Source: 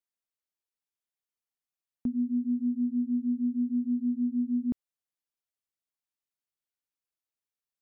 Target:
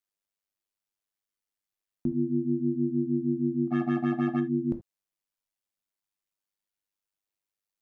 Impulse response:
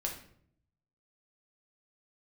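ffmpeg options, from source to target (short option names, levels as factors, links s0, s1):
-filter_complex "[0:a]asplit=3[s0][s1][s2];[s0]afade=t=out:st=3.67:d=0.02[s3];[s1]acrusher=bits=4:mix=0:aa=0.5,afade=t=in:st=3.67:d=0.02,afade=t=out:st=4.39:d=0.02[s4];[s2]afade=t=in:st=4.39:d=0.02[s5];[s3][s4][s5]amix=inputs=3:normalize=0,tremolo=f=100:d=0.824,asplit=2[s6][s7];[1:a]atrim=start_sample=2205,atrim=end_sample=3969[s8];[s7][s8]afir=irnorm=-1:irlink=0,volume=0.794[s9];[s6][s9]amix=inputs=2:normalize=0"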